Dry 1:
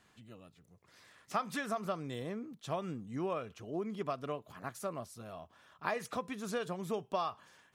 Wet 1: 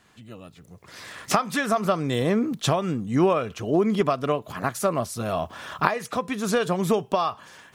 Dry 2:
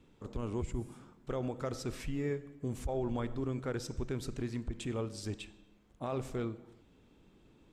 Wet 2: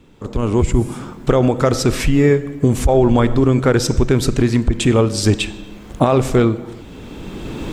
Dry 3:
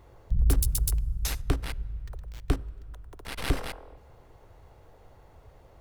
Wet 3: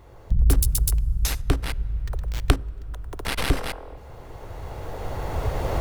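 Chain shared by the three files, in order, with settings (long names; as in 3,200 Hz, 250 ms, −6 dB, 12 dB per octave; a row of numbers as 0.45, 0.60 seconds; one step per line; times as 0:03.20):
camcorder AGC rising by 12 dB per second
normalise the peak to −1.5 dBFS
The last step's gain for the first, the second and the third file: +7.5, +13.5, +4.5 decibels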